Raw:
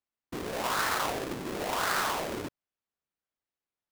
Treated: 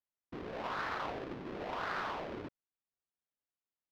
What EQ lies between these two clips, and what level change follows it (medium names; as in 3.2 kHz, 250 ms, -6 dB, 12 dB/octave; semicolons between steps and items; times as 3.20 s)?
distance through air 260 m; -6.5 dB